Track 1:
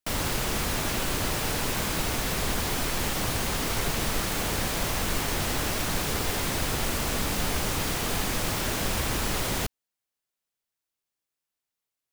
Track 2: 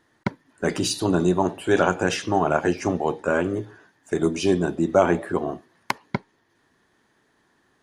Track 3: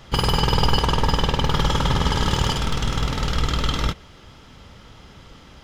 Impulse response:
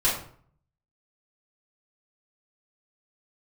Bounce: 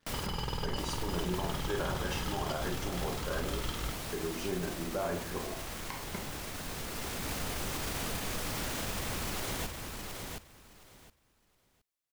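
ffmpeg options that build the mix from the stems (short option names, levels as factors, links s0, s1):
-filter_complex "[0:a]alimiter=limit=0.0668:level=0:latency=1:release=32,volume=0.596,asplit=2[s0][s1];[s1]volume=0.596[s2];[1:a]volume=0.119,asplit=3[s3][s4][s5];[s4]volume=0.282[s6];[2:a]aeval=exprs='sgn(val(0))*max(abs(val(0))-0.0075,0)':c=same,volume=0.178[s7];[s5]apad=whole_len=534875[s8];[s0][s8]sidechaincompress=threshold=0.00355:ratio=4:attack=6.3:release=1070[s9];[3:a]atrim=start_sample=2205[s10];[s6][s10]afir=irnorm=-1:irlink=0[s11];[s2]aecho=0:1:717|1434|2151:1|0.18|0.0324[s12];[s9][s3][s7][s11][s12]amix=inputs=5:normalize=0,alimiter=limit=0.0668:level=0:latency=1:release=75"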